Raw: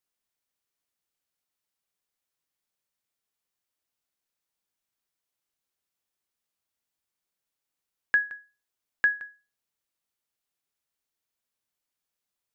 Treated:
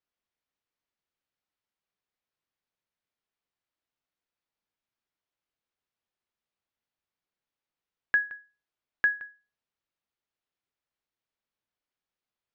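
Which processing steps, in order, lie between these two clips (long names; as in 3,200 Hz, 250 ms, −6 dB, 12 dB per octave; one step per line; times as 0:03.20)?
high-frequency loss of the air 170 metres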